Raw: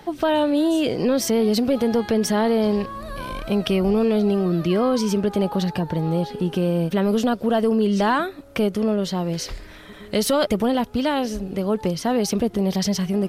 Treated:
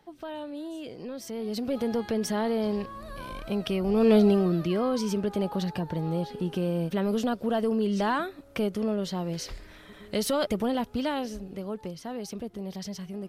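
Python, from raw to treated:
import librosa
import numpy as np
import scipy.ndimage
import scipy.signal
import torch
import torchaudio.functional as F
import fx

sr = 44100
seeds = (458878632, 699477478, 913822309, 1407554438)

y = fx.gain(x, sr, db=fx.line((1.22, -18.0), (1.78, -8.0), (3.86, -8.0), (4.13, 1.5), (4.7, -7.0), (11.04, -7.0), (11.99, -15.0)))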